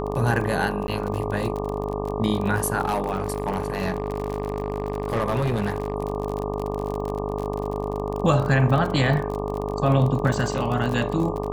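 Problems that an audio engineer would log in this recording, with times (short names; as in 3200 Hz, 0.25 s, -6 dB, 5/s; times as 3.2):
buzz 50 Hz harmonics 24 -29 dBFS
crackle 45/s -27 dBFS
tone 420 Hz -30 dBFS
0.87–0.88 gap 11 ms
2.85–5.94 clipped -18 dBFS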